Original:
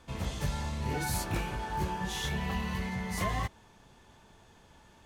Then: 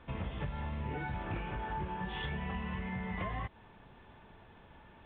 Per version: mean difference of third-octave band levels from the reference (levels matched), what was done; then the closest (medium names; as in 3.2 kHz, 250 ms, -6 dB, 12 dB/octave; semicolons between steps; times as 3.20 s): 8.5 dB: low-pass 3 kHz 24 dB/octave; compression, threshold -36 dBFS, peak gain reduction 9 dB; trim +1.5 dB; A-law 64 kbps 8 kHz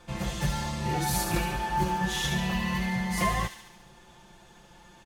2.5 dB: comb 5.7 ms, depth 77%; on a send: feedback echo behind a high-pass 71 ms, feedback 61%, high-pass 2.4 kHz, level -5.5 dB; on the sum: trim +2.5 dB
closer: second